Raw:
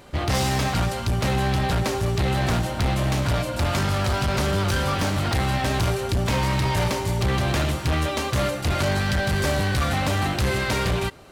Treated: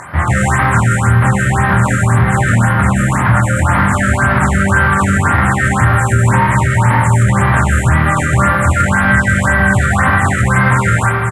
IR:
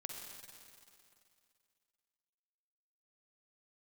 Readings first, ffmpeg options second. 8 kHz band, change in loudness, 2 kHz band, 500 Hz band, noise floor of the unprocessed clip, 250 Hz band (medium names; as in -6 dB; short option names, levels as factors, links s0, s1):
+9.0 dB, +11.5 dB, +15.5 dB, +5.0 dB, -30 dBFS, +11.0 dB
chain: -filter_complex "[0:a]highpass=f=80:w=0.5412,highpass=f=80:w=1.3066,acrossover=split=3300[s0][s1];[s1]acompressor=threshold=0.00794:ratio=4:attack=1:release=60[s2];[s0][s2]amix=inputs=2:normalize=0,firequalizer=gain_entry='entry(130,0);entry(400,-14);entry(940,2);entry(1800,4);entry(2600,-11);entry(4700,-27);entry(7500,10);entry(15000,-17)':delay=0.05:min_phase=1,acrossover=split=270|5300[s3][s4][s5];[s4]acompressor=mode=upward:threshold=0.00891:ratio=2.5[s6];[s3][s6][s5]amix=inputs=3:normalize=0,asoftclip=type=tanh:threshold=0.178,asplit=2[s7][s8];[s8]adelay=25,volume=0.631[s9];[s7][s9]amix=inputs=2:normalize=0[s10];[1:a]atrim=start_sample=2205,asetrate=43659,aresample=44100[s11];[s10][s11]afir=irnorm=-1:irlink=0,alimiter=level_in=8.91:limit=0.891:release=50:level=0:latency=1,afftfilt=real='re*(1-between(b*sr/1024,840*pow(7700/840,0.5+0.5*sin(2*PI*1.9*pts/sr))/1.41,840*pow(7700/840,0.5+0.5*sin(2*PI*1.9*pts/sr))*1.41))':imag='im*(1-between(b*sr/1024,840*pow(7700/840,0.5+0.5*sin(2*PI*1.9*pts/sr))/1.41,840*pow(7700/840,0.5+0.5*sin(2*PI*1.9*pts/sr))*1.41))':win_size=1024:overlap=0.75,volume=0.891"